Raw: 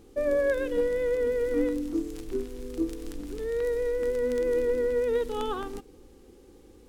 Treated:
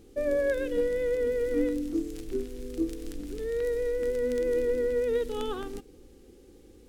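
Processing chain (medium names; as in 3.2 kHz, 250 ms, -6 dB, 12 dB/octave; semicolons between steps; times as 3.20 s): peaking EQ 1 kHz -7.5 dB 0.89 oct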